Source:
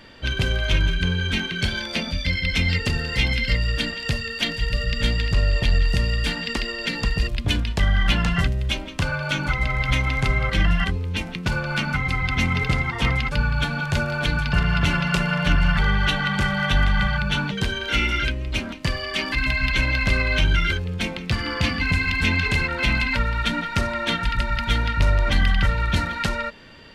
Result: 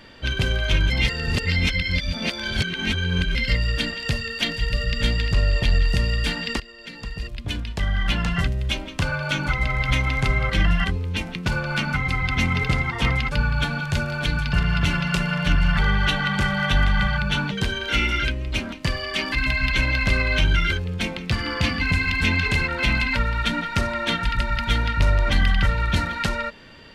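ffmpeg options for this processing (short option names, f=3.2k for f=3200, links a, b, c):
-filter_complex "[0:a]asettb=1/sr,asplit=3[a][b][c];[a]atrim=end=13.784[d];[b]atrim=start=13.78:end=15.73,asetpts=PTS-STARTPTS,afade=t=in:d=0.004:c=qsin,afade=t=out:st=1.946:d=0.004:c=qsin,equalizer=f=720:w=0.46:g=-3.5[e];[c]atrim=start=15.726[f];[d][e]acrossfade=d=0.004:c1=hsin:c2=qsin[g];[g][f]acrossfade=d=0.004:c1=qsin:c2=hsin,asplit=4[h][i][j][k];[h]atrim=end=0.902[l];[i]atrim=start=0.898:end=3.352,asetpts=PTS-STARTPTS,areverse[m];[j]atrim=start=3.348:end=6.6,asetpts=PTS-STARTPTS,afade=t=out:st=3.248:d=0.004:c=hsin:silence=0.133352[n];[k]atrim=start=6.6,asetpts=PTS-STARTPTS,afade=t=in:d=2.24:silence=0.133352[o];[l][m]acrossfade=d=0.004:c1=hsin:c2=hsin[p];[n][o]concat=n=2:v=0:a=1[q];[p][q]acrossfade=d=0.004:c1=hsin:c2=hsin"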